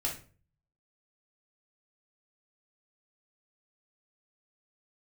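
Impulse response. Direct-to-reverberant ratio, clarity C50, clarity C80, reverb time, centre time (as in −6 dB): −3.5 dB, 8.0 dB, 14.5 dB, 0.40 s, 24 ms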